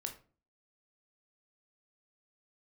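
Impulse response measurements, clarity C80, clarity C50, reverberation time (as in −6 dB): 16.5 dB, 10.5 dB, 0.40 s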